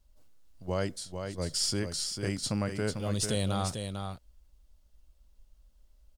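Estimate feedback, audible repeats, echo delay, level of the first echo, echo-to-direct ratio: no regular repeats, 1, 446 ms, -6.5 dB, -6.5 dB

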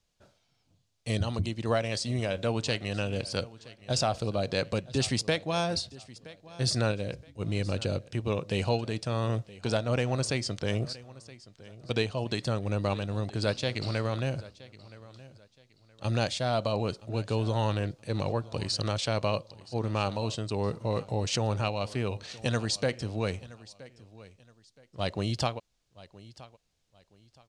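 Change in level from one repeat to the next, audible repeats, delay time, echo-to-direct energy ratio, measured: -11.0 dB, 2, 971 ms, -19.0 dB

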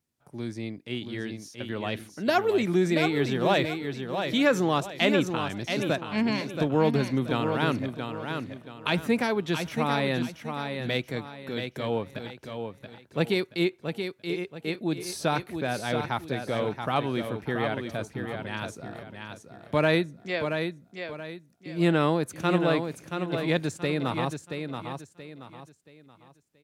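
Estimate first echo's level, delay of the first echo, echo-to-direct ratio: -6.5 dB, 678 ms, -6.0 dB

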